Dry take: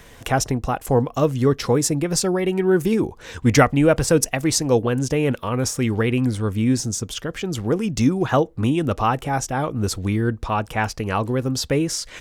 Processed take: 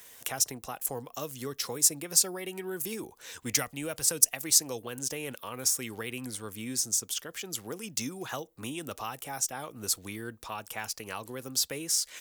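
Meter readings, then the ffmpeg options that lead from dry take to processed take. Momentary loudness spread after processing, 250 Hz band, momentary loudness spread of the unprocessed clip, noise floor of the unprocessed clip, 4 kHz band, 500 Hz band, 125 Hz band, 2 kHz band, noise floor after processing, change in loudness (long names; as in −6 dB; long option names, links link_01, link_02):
15 LU, −20.0 dB, 6 LU, −45 dBFS, −4.0 dB, −18.5 dB, −23.5 dB, −12.0 dB, −58 dBFS, −9.0 dB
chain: -filter_complex "[0:a]aemphasis=mode=production:type=riaa,acrossover=split=170|3000[link_01][link_02][link_03];[link_02]acompressor=threshold=-24dB:ratio=3[link_04];[link_01][link_04][link_03]amix=inputs=3:normalize=0,volume=-11.5dB"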